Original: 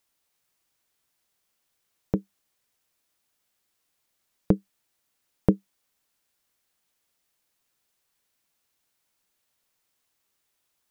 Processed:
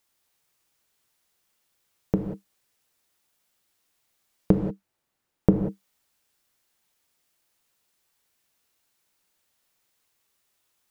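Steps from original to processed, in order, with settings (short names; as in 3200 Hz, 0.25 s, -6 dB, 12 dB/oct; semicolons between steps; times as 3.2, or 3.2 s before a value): 4.56–5.52 high shelf 2200 Hz -9.5 dB; non-linear reverb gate 0.21 s flat, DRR 4 dB; gain +1.5 dB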